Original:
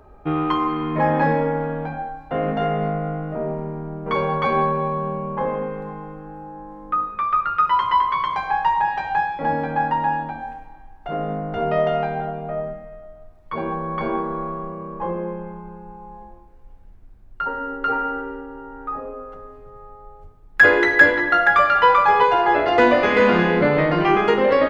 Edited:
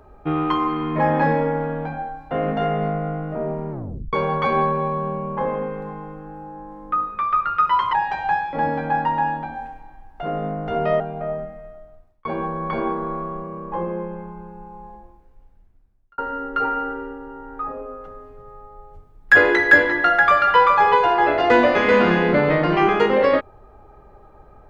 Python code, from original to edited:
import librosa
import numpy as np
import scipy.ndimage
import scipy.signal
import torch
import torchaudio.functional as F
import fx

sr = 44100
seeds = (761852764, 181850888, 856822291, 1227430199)

y = fx.edit(x, sr, fx.tape_stop(start_s=3.71, length_s=0.42),
    fx.cut(start_s=7.93, length_s=0.86),
    fx.cut(start_s=11.86, length_s=0.42),
    fx.fade_out_span(start_s=12.84, length_s=0.69, curve='qsin'),
    fx.fade_out_span(start_s=16.1, length_s=1.36), tone=tone)